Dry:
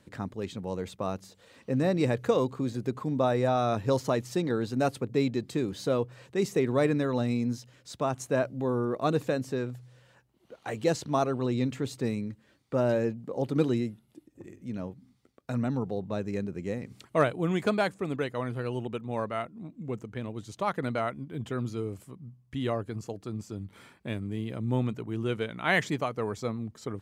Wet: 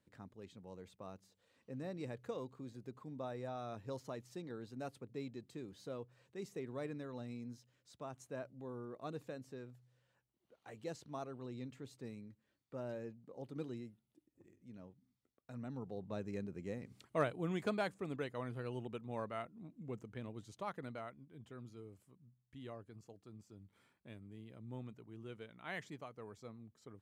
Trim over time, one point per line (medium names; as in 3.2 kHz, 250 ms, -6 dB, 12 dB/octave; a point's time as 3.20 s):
15.50 s -18.5 dB
16.13 s -10.5 dB
20.33 s -10.5 dB
21.27 s -19.5 dB